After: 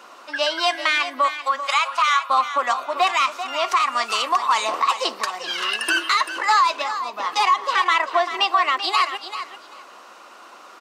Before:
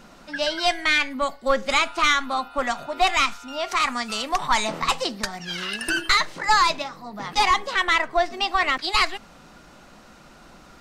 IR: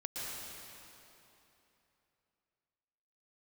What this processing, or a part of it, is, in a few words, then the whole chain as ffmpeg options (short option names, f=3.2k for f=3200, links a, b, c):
laptop speaker: -filter_complex "[0:a]highpass=f=350:w=0.5412,highpass=f=350:w=1.3066,equalizer=f=1.1k:t=o:w=0.38:g=11,equalizer=f=2.8k:t=o:w=0.31:g=4.5,alimiter=limit=-12dB:level=0:latency=1:release=176,asettb=1/sr,asplit=3[a][b][c];[a]atrim=end=1.284[d];[b]atrim=start=1.28:end=2.3,asetpts=PTS-STARTPTS,afade=t=in:d=0.004:c=qsin,afade=t=out:st=1.016:d=0.004:c=qsin,highpass=f=720:w=0.5412,highpass=f=720:w=1.3066[e];[c]atrim=start=2.296[f];[d][e]acrossfade=d=0.004:c1=hsin:c2=qsin[g];[g][f]acrossfade=d=0.004:c1=qsin:c2=hsin,aecho=1:1:389|778:0.282|0.0479,volume=2.5dB"